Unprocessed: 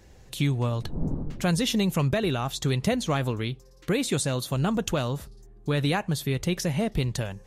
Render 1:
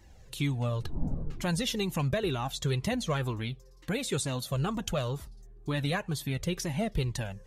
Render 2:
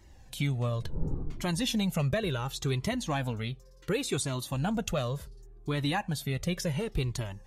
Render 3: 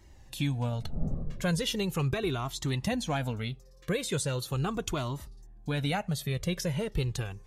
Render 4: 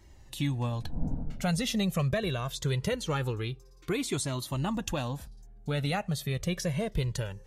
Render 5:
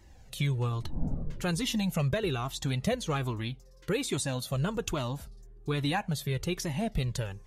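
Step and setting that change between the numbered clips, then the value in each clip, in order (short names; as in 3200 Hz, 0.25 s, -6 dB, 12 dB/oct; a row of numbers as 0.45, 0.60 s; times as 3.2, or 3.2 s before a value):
cascading flanger, rate: 2.1, 0.69, 0.39, 0.23, 1.2 Hz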